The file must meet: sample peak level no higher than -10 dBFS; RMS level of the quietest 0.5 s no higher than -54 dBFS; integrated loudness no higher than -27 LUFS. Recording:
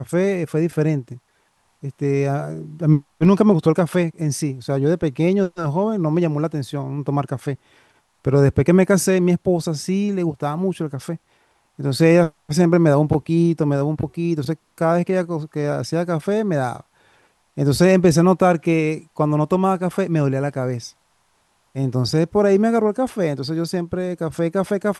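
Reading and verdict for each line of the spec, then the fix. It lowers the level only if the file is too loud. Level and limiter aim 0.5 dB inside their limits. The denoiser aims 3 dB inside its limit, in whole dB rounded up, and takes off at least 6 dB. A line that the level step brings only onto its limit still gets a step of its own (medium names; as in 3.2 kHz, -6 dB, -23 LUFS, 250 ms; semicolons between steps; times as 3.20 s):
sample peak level -3.0 dBFS: fail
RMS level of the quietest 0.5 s -63 dBFS: pass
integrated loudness -19.5 LUFS: fail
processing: trim -8 dB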